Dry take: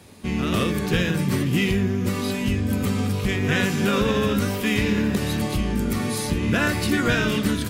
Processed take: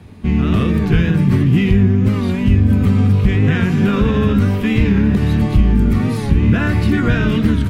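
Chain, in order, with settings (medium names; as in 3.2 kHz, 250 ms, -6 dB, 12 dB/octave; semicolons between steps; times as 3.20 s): peaking EQ 140 Hz -3.5 dB 1.7 oct; band-stop 550 Hz, Q 12; in parallel at +1 dB: peak limiter -15.5 dBFS, peak gain reduction 8.5 dB; on the sum: tone controls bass +13 dB, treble -13 dB; warped record 45 rpm, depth 100 cents; trim -3.5 dB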